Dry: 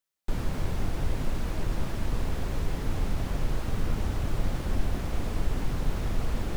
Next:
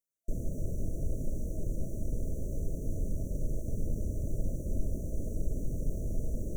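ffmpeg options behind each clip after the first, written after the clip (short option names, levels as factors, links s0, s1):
-af "afftfilt=real='re*(1-between(b*sr/4096,670,5700))':imag='im*(1-between(b*sr/4096,670,5700))':win_size=4096:overlap=0.75,volume=0.596"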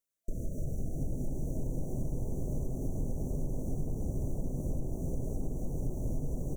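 -filter_complex "[0:a]acompressor=threshold=0.0282:ratio=6,asplit=2[s0][s1];[s1]asplit=6[s2][s3][s4][s5][s6][s7];[s2]adelay=349,afreqshift=120,volume=0.335[s8];[s3]adelay=698,afreqshift=240,volume=0.174[s9];[s4]adelay=1047,afreqshift=360,volume=0.0902[s10];[s5]adelay=1396,afreqshift=480,volume=0.0473[s11];[s6]adelay=1745,afreqshift=600,volume=0.0245[s12];[s7]adelay=2094,afreqshift=720,volume=0.0127[s13];[s8][s9][s10][s11][s12][s13]amix=inputs=6:normalize=0[s14];[s0][s14]amix=inputs=2:normalize=0,volume=1.26"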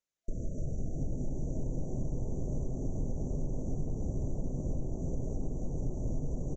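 -af "aresample=16000,aresample=44100"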